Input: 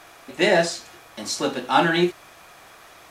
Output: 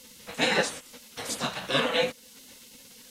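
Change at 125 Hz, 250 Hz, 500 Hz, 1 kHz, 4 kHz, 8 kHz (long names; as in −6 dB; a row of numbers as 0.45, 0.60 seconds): −9.0, −10.5, −7.0, −9.5, −1.5, −3.0 decibels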